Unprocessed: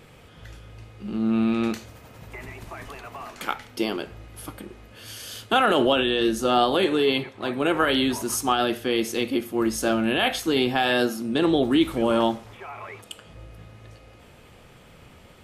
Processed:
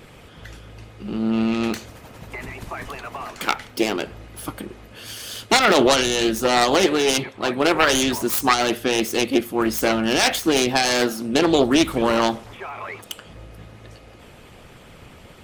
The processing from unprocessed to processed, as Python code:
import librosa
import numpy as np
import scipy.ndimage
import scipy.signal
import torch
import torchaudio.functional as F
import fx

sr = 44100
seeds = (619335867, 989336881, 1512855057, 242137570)

y = fx.self_delay(x, sr, depth_ms=0.22)
y = fx.hpss(y, sr, part='harmonic', gain_db=-7)
y = y * 10.0 ** (8.0 / 20.0)